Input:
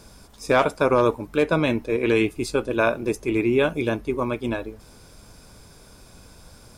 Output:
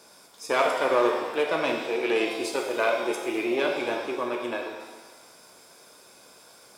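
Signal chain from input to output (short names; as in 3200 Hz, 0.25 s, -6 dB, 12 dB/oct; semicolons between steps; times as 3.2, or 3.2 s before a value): one diode to ground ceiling -15 dBFS; HPF 390 Hz 12 dB/oct; shimmer reverb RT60 1.2 s, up +7 st, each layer -8 dB, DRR 1.5 dB; gain -2.5 dB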